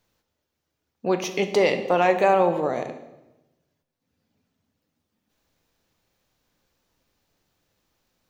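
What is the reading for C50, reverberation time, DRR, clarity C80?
10.5 dB, 1.0 s, 7.5 dB, 12.5 dB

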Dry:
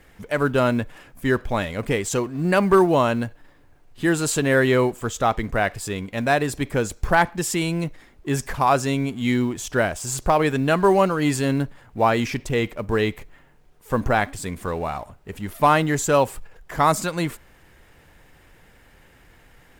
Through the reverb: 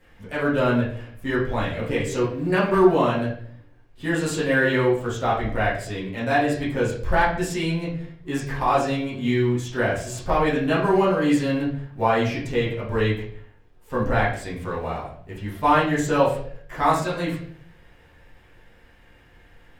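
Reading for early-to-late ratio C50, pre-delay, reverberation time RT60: 4.5 dB, 7 ms, 0.60 s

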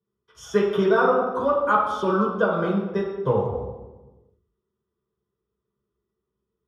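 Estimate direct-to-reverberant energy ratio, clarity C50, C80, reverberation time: −6.0 dB, 2.0 dB, 4.5 dB, 1.2 s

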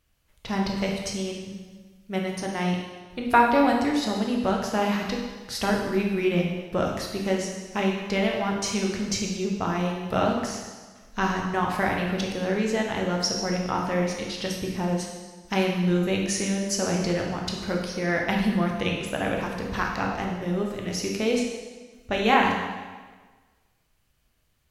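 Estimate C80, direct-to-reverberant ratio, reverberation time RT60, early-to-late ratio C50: 4.5 dB, −0.5 dB, 1.4 s, 2.5 dB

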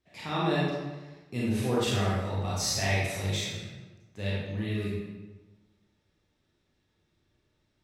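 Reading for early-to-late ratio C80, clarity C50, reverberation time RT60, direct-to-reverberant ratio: 1.5 dB, −2.0 dB, 1.2 s, −7.0 dB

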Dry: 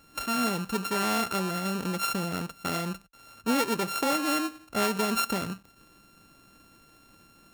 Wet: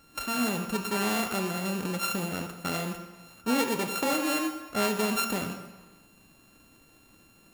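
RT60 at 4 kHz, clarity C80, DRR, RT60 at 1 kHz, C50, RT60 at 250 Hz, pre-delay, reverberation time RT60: 1.1 s, 9.5 dB, 6.0 dB, 1.3 s, 8.0 dB, 1.2 s, 14 ms, 1.2 s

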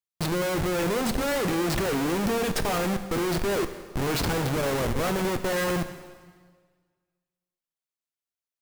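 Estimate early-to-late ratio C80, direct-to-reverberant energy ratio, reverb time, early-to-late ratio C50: 12.0 dB, 9.0 dB, 1.6 s, 10.5 dB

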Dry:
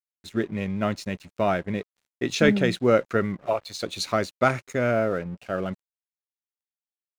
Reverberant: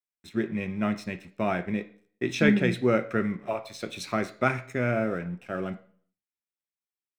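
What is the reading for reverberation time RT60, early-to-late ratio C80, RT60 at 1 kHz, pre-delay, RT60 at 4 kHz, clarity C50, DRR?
0.50 s, 19.0 dB, 0.50 s, 3 ms, 0.45 s, 15.0 dB, 8.0 dB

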